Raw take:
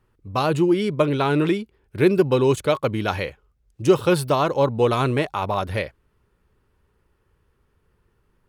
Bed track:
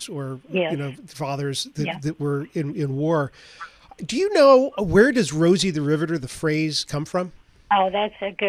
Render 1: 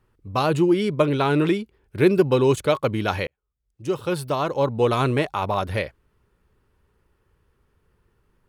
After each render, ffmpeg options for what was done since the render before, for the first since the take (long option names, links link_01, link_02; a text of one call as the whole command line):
ffmpeg -i in.wav -filter_complex "[0:a]asplit=2[link_01][link_02];[link_01]atrim=end=3.27,asetpts=PTS-STARTPTS,afade=type=out:start_time=3.266:duration=0.004:curve=hsin[link_03];[link_02]atrim=start=3.27,asetpts=PTS-STARTPTS,afade=type=in:duration=1.76[link_04];[link_03][link_04]concat=n=2:v=0:a=1" out.wav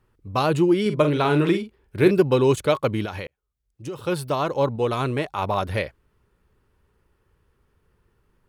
ffmpeg -i in.wav -filter_complex "[0:a]asettb=1/sr,asplit=3[link_01][link_02][link_03];[link_01]atrim=end=0.814[link_04];[link_02]atrim=start=0.81:end=2.11,asetpts=PTS-STARTPTS,afade=type=in:duration=0.004:curve=qsin,afade=type=out:start_time=1.296:duration=0.004:curve=qsin,asplit=2[link_05][link_06];[link_06]adelay=47,volume=-9dB[link_07];[link_05][link_07]amix=inputs=2:normalize=0,atrim=end_sample=57330[link_08];[link_03]atrim=start=2.106[link_09];[link_04][link_08]acrossfade=duration=0.004:curve1=hsin:curve2=qsin[link_10];[link_10][link_09]acrossfade=duration=0.004:curve1=qsin:curve2=hsin,asettb=1/sr,asplit=3[link_11][link_12][link_13];[link_11]atrim=end=3.054[link_14];[link_12]atrim=start=3.05:end=4.06,asetpts=PTS-STARTPTS,afade=type=in:duration=0.004:curve=qsin,afade=type=out:start_time=1.006:duration=0.004:curve=qsin,acompressor=threshold=-27dB:ratio=12:attack=3.2:release=140:knee=1:detection=peak[link_15];[link_13]atrim=start=4.056[link_16];[link_14][link_15]acrossfade=duration=0.004:curve1=hsin:curve2=qsin[link_17];[link_17][link_16]acrossfade=duration=0.004:curve1=qsin:curve2=hsin,asplit=3[link_18][link_19][link_20];[link_18]atrim=end=4.762[link_21];[link_19]atrim=start=4.758:end=5.382,asetpts=PTS-STARTPTS,volume=-3.5dB[link_22];[link_20]atrim=start=5.378[link_23];[link_21][link_22]acrossfade=duration=0.004:curve1=hsin:curve2=hsin[link_24];[link_24][link_23]acrossfade=duration=0.004:curve1=hsin:curve2=hsin" out.wav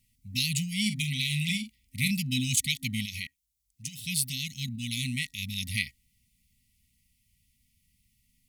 ffmpeg -i in.wav -af "afftfilt=real='re*(1-between(b*sr/4096,260,1900))':imag='im*(1-between(b*sr/4096,260,1900))':win_size=4096:overlap=0.75,bass=frequency=250:gain=-7,treble=frequency=4000:gain=12" out.wav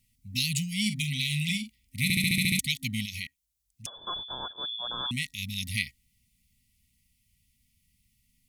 ffmpeg -i in.wav -filter_complex "[0:a]asettb=1/sr,asplit=3[link_01][link_02][link_03];[link_01]atrim=end=3.864[link_04];[link_02]atrim=start=3.86:end=5.11,asetpts=PTS-STARTPTS,afade=type=in:duration=0.004:curve=qsin,afade=type=out:start_time=1.246:duration=0.004:curve=qsin,lowpass=frequency=3100:width_type=q:width=0.5098,lowpass=frequency=3100:width_type=q:width=0.6013,lowpass=frequency=3100:width_type=q:width=0.9,lowpass=frequency=3100:width_type=q:width=2.563,afreqshift=-3600[link_05];[link_03]atrim=start=5.106[link_06];[link_04][link_05]acrossfade=duration=0.004:curve1=hsin:curve2=qsin[link_07];[link_07][link_06]acrossfade=duration=0.004:curve1=qsin:curve2=hsin,asplit=9[link_08][link_09][link_10][link_11][link_12][link_13][link_14][link_15][link_16];[link_08]atrim=end=2.102[link_17];[link_09]atrim=start=2.028:end=2.102[link_18];[link_10]atrim=start=2.028:end=2.102[link_19];[link_11]atrim=start=2.028:end=2.102[link_20];[link_12]atrim=start=2.028:end=2.102[link_21];[link_13]atrim=start=2.028:end=2.102[link_22];[link_14]atrim=start=2.028:end=2.102[link_23];[link_15]atrim=start=2.028:end=2.102[link_24];[link_16]atrim=start=2.588[link_25];[link_17][link_18]acrossfade=duration=0.004:curve1=hsin:curve2=hsin[link_26];[link_26][link_19]acrossfade=duration=0.004:curve1=hsin:curve2=hsin[link_27];[link_27][link_20]acrossfade=duration=0.004:curve1=hsin:curve2=hsin[link_28];[link_28][link_21]acrossfade=duration=0.004:curve1=hsin:curve2=hsin[link_29];[link_29][link_22]acrossfade=duration=0.004:curve1=hsin:curve2=hsin[link_30];[link_30][link_23]acrossfade=duration=0.004:curve1=hsin:curve2=hsin[link_31];[link_31][link_24]acrossfade=duration=0.004:curve1=hsin:curve2=hsin[link_32];[link_32][link_25]acrossfade=duration=0.004:curve1=hsin:curve2=hsin" out.wav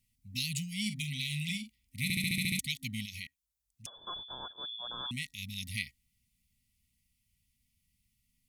ffmpeg -i in.wav -af "volume=-6.5dB" out.wav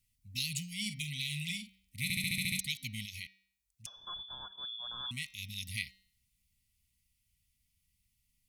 ffmpeg -i in.wav -af "equalizer=frequency=420:width=0.62:gain=-11.5,bandreject=frequency=191.2:width_type=h:width=4,bandreject=frequency=382.4:width_type=h:width=4,bandreject=frequency=573.6:width_type=h:width=4,bandreject=frequency=764.8:width_type=h:width=4,bandreject=frequency=956:width_type=h:width=4,bandreject=frequency=1147.2:width_type=h:width=4,bandreject=frequency=1338.4:width_type=h:width=4,bandreject=frequency=1529.6:width_type=h:width=4,bandreject=frequency=1720.8:width_type=h:width=4,bandreject=frequency=1912:width_type=h:width=4,bandreject=frequency=2103.2:width_type=h:width=4,bandreject=frequency=2294.4:width_type=h:width=4,bandreject=frequency=2485.6:width_type=h:width=4,bandreject=frequency=2676.8:width_type=h:width=4,bandreject=frequency=2868:width_type=h:width=4,bandreject=frequency=3059.2:width_type=h:width=4,bandreject=frequency=3250.4:width_type=h:width=4,bandreject=frequency=3441.6:width_type=h:width=4,bandreject=frequency=3632.8:width_type=h:width=4,bandreject=frequency=3824:width_type=h:width=4,bandreject=frequency=4015.2:width_type=h:width=4,bandreject=frequency=4206.4:width_type=h:width=4,bandreject=frequency=4397.6:width_type=h:width=4,bandreject=frequency=4588.8:width_type=h:width=4,bandreject=frequency=4780:width_type=h:width=4,bandreject=frequency=4971.2:width_type=h:width=4,bandreject=frequency=5162.4:width_type=h:width=4,bandreject=frequency=5353.6:width_type=h:width=4,bandreject=frequency=5544.8:width_type=h:width=4,bandreject=frequency=5736:width_type=h:width=4,bandreject=frequency=5927.2:width_type=h:width=4,bandreject=frequency=6118.4:width_type=h:width=4" out.wav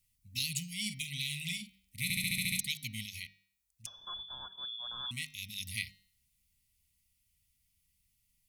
ffmpeg -i in.wav -af "highshelf=frequency=8000:gain=4.5,bandreject=frequency=50:width_type=h:width=6,bandreject=frequency=100:width_type=h:width=6,bandreject=frequency=150:width_type=h:width=6,bandreject=frequency=200:width_type=h:width=6,bandreject=frequency=250:width_type=h:width=6,bandreject=frequency=300:width_type=h:width=6,bandreject=frequency=350:width_type=h:width=6,bandreject=frequency=400:width_type=h:width=6,bandreject=frequency=450:width_type=h:width=6" out.wav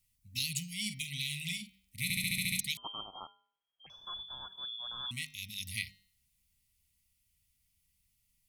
ffmpeg -i in.wav -filter_complex "[0:a]asettb=1/sr,asplit=3[link_01][link_02][link_03];[link_01]atrim=end=2.774[link_04];[link_02]atrim=start=2.77:end=3.9,asetpts=PTS-STARTPTS,afade=type=in:duration=0.004:curve=qsin,afade=type=out:start_time=1.126:duration=0.004:curve=qsin,lowpass=frequency=2800:width_type=q:width=0.5098,lowpass=frequency=2800:width_type=q:width=0.6013,lowpass=frequency=2800:width_type=q:width=0.9,lowpass=frequency=2800:width_type=q:width=2.563,afreqshift=-3300[link_05];[link_03]atrim=start=3.896[link_06];[link_04][link_05]acrossfade=duration=0.004:curve1=hsin:curve2=qsin[link_07];[link_07][link_06]acrossfade=duration=0.004:curve1=qsin:curve2=hsin" out.wav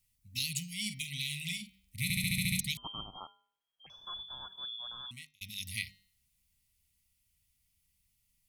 ffmpeg -i in.wav -filter_complex "[0:a]asettb=1/sr,asplit=3[link_01][link_02][link_03];[link_01]atrim=end=1.524[link_04];[link_02]atrim=start=1.52:end=3.18,asetpts=PTS-STARTPTS,afade=type=in:duration=0.004:curve=qsin,afade=type=out:start_time=1.656:duration=0.004:curve=qsin,asubboost=boost=8:cutoff=230[link_05];[link_03]atrim=start=3.176[link_06];[link_04][link_05]acrossfade=duration=0.004:curve1=hsin:curve2=qsin[link_07];[link_07][link_06]acrossfade=duration=0.004:curve1=qsin:curve2=hsin,asplit=2[link_08][link_09];[link_08]atrim=end=5.41,asetpts=PTS-STARTPTS,afade=type=out:start_time=4.78:duration=0.63[link_10];[link_09]atrim=start=5.41,asetpts=PTS-STARTPTS,afade=type=in:duration=0.004:curve=hsin[link_11];[link_10][link_11]concat=n=2:v=0:a=1" out.wav